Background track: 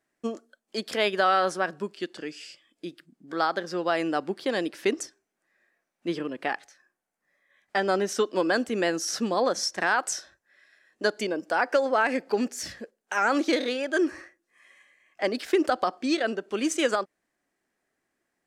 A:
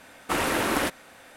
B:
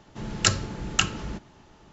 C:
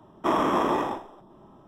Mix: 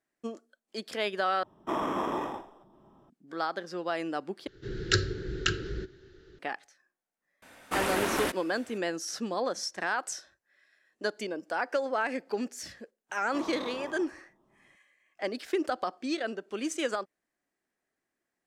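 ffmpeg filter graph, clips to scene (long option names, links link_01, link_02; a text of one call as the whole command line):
ffmpeg -i bed.wav -i cue0.wav -i cue1.wav -i cue2.wav -filter_complex "[3:a]asplit=2[link_01][link_02];[0:a]volume=-6.5dB[link_03];[2:a]firequalizer=gain_entry='entry(110,0);entry(230,-12);entry(380,10);entry(670,-21);entry(1000,-24);entry(1500,4);entry(2400,-9);entry(4000,1);entry(6300,-10);entry(10000,-18)':delay=0.05:min_phase=1[link_04];[link_03]asplit=3[link_05][link_06][link_07];[link_05]atrim=end=1.434[link_08];[link_01]atrim=end=1.67,asetpts=PTS-STARTPTS,volume=-7.5dB[link_09];[link_06]atrim=start=3.096:end=4.474[link_10];[link_04]atrim=end=1.92,asetpts=PTS-STARTPTS,volume=-1dB[link_11];[link_07]atrim=start=6.386[link_12];[1:a]atrim=end=1.36,asetpts=PTS-STARTPTS,volume=-4.5dB,afade=type=in:duration=0.004:curve=hsin,afade=type=out:start_time=1.356:duration=0.004:curve=hsin,adelay=7420[link_13];[link_02]atrim=end=1.67,asetpts=PTS-STARTPTS,volume=-17dB,afade=type=in:duration=0.004:curve=hsin,afade=type=out:start_time=1.666:duration=0.004:curve=hsin,adelay=13090[link_14];[link_08][link_09]acrossfade=duration=0.004:curve1=hsin:curve2=hsin[link_15];[link_15][link_10]acrossfade=duration=0.004:curve1=hsin:curve2=hsin[link_16];[link_16][link_11]acrossfade=duration=0.004:curve1=hsin:curve2=hsin[link_17];[link_17][link_12]acrossfade=duration=0.004:curve1=hsin:curve2=hsin[link_18];[link_18][link_13][link_14]amix=inputs=3:normalize=0" out.wav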